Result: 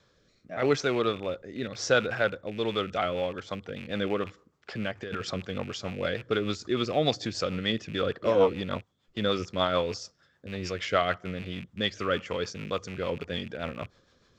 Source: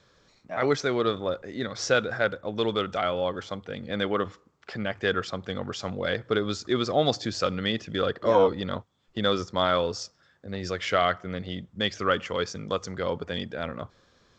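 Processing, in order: rattle on loud lows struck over -39 dBFS, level -30 dBFS; rotary cabinet horn 0.85 Hz, later 6.7 Hz, at 2.37 s; 5.02–5.46 s: compressor with a negative ratio -33 dBFS, ratio -1

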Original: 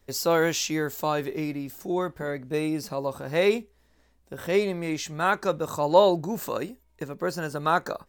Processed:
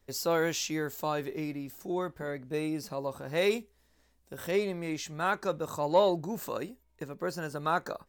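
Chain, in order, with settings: 3.37–4.51 s: treble shelf 3.8 kHz +7 dB; in parallel at -8.5 dB: saturation -15 dBFS, distortion -14 dB; on the sum: trim -8 dB

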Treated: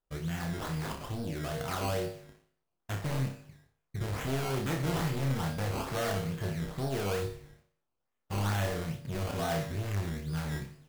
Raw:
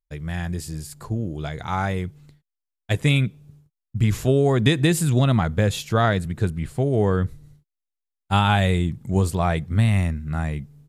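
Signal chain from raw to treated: treble shelf 8 kHz +10 dB; band-stop 860 Hz, Q 12; in parallel at 0 dB: compression, threshold -30 dBFS, peak gain reduction 17 dB; on the sum: overload inside the chain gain 20.5 dB; feedback comb 52 Hz, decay 0.58 s, harmonics odd, mix 80%; decimation with a swept rate 17×, swing 100% 2.3 Hz; on a send: flutter echo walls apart 5.1 m, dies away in 0.34 s

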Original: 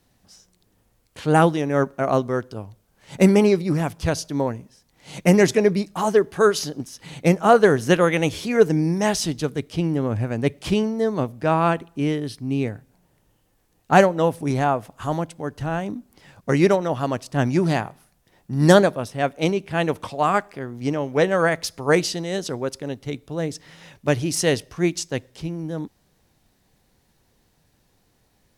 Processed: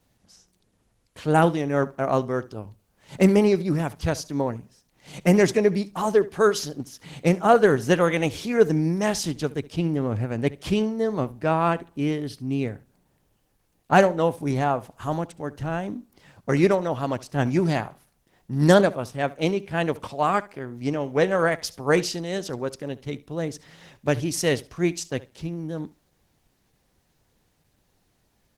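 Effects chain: feedback delay 70 ms, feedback 16%, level -19.5 dB; trim -2 dB; Opus 16 kbps 48 kHz

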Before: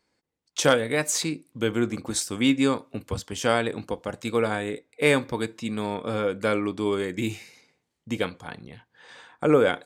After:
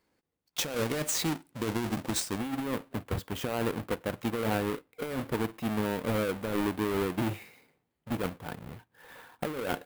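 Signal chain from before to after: square wave that keeps the level; peaking EQ 6 kHz -2.5 dB 1.3 oct, from 2.38 s -9.5 dB; compressor with a negative ratio -22 dBFS, ratio -1; trim -8 dB

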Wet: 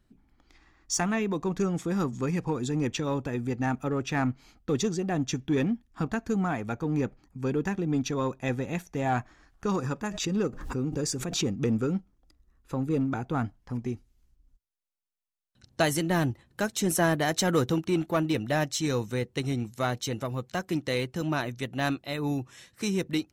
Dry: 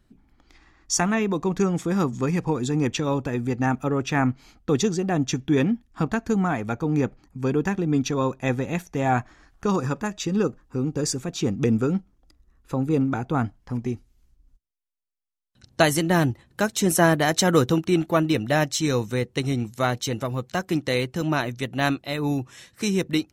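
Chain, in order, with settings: in parallel at -5 dB: hard clipper -18.5 dBFS, distortion -11 dB; 10.11–11.47 s: on the sum: swell ahead of each attack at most 59 dB/s; trim -8.5 dB

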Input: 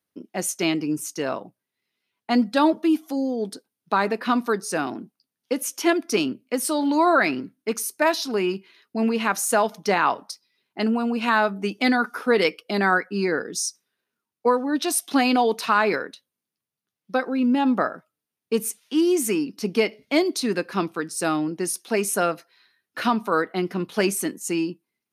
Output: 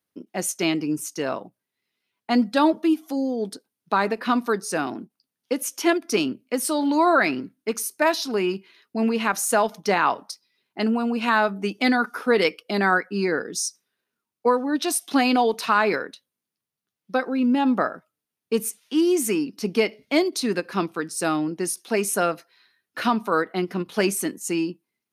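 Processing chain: endings held to a fixed fall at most 550 dB/s

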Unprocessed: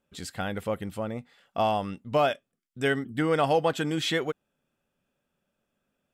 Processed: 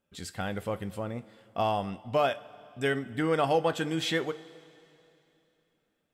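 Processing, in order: two-slope reverb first 0.27 s, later 3 s, from -17 dB, DRR 11 dB; trim -2.5 dB

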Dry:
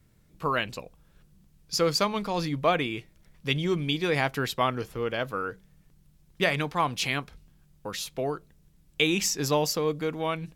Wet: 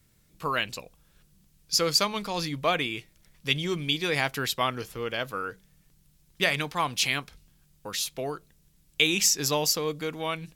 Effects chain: treble shelf 2.1 kHz +10 dB; trim -3.5 dB

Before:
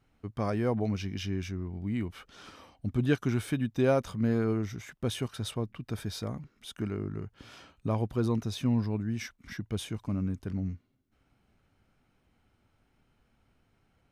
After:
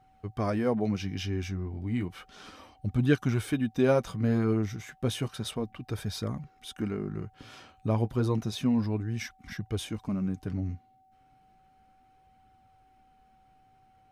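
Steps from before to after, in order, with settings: flange 0.32 Hz, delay 0.5 ms, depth 8.9 ms, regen -43%; whistle 760 Hz -66 dBFS; trim +5.5 dB

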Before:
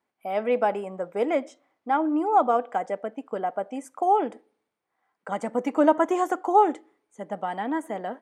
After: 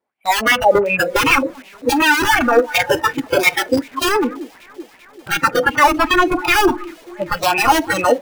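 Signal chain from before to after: rattle on loud lows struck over -44 dBFS, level -27 dBFS; low-pass that closes with the level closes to 330 Hz, closed at -19 dBFS; bass shelf 160 Hz +3.5 dB; 5.58–6.00 s: compression 2:1, threshold -25 dBFS, peak gain reduction 4 dB; integer overflow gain 24.5 dB; on a send: echo whose repeats swap between lows and highs 195 ms, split 2 kHz, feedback 86%, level -12 dB; on the sum: spectral noise reduction 20 dB; loudness maximiser +26 dB; sweeping bell 2.7 Hz 450–2700 Hz +13 dB; trim -10 dB

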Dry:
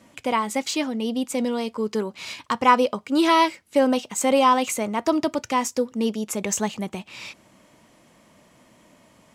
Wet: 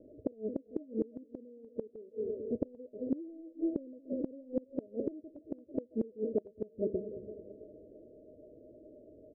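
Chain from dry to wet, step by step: zero-crossing glitches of -19 dBFS; bass shelf 120 Hz +11 dB; comb 2.7 ms, depth 68%; waveshaping leveller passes 1; Chebyshev low-pass 620 Hz, order 10; bass shelf 340 Hz -11 dB; two-band feedback delay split 450 Hz, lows 222 ms, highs 332 ms, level -12.5 dB; inverted gate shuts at -20 dBFS, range -26 dB

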